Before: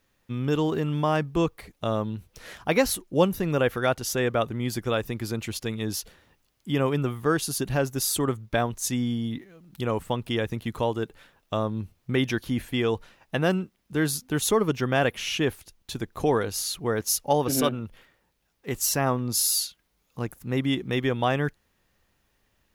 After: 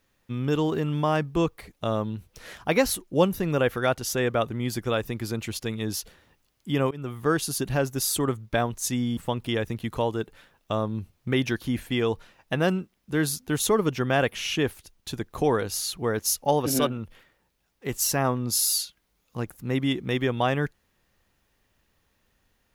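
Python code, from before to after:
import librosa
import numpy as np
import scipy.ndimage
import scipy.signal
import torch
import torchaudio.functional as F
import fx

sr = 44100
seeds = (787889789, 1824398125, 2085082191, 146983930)

y = fx.edit(x, sr, fx.fade_in_from(start_s=6.91, length_s=0.34, floor_db=-21.5),
    fx.cut(start_s=9.17, length_s=0.82), tone=tone)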